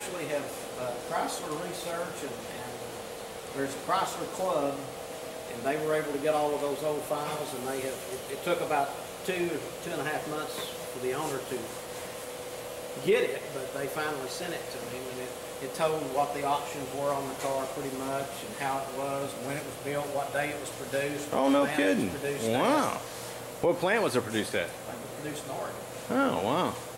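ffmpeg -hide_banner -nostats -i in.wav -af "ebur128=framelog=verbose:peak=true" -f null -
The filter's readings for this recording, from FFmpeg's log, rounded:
Integrated loudness:
  I:         -31.6 LUFS
  Threshold: -41.6 LUFS
Loudness range:
  LRA:         5.6 LU
  Threshold: -51.6 LUFS
  LRA low:   -34.0 LUFS
  LRA high:  -28.4 LUFS
True peak:
  Peak:      -13.0 dBFS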